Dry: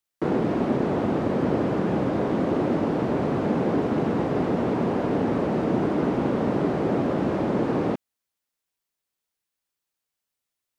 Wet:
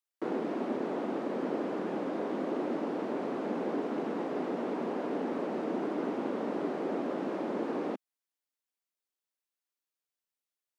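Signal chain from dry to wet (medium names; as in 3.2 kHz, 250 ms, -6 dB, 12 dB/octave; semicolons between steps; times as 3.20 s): high-pass 230 Hz 24 dB/octave; trim -8.5 dB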